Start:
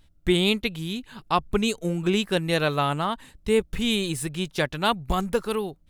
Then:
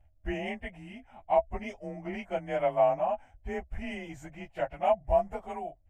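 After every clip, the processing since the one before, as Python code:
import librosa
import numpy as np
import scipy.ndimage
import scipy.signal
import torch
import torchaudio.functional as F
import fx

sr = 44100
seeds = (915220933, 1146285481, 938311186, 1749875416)

y = fx.partial_stretch(x, sr, pct=92)
y = fx.curve_eq(y, sr, hz=(110.0, 150.0, 310.0, 450.0, 660.0, 1200.0, 2000.0, 4000.0, 9500.0), db=(0, -16, -12, -16, 10, -14, -7, -26, -19))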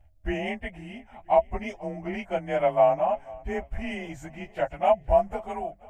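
y = fx.echo_feedback(x, sr, ms=489, feedback_pct=42, wet_db=-22.5)
y = F.gain(torch.from_numpy(y), 4.5).numpy()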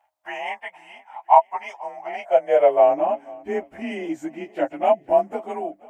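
y = fx.filter_sweep_highpass(x, sr, from_hz=920.0, to_hz=300.0, start_s=1.9, end_s=3.07, q=5.8)
y = F.gain(torch.from_numpy(y), 1.0).numpy()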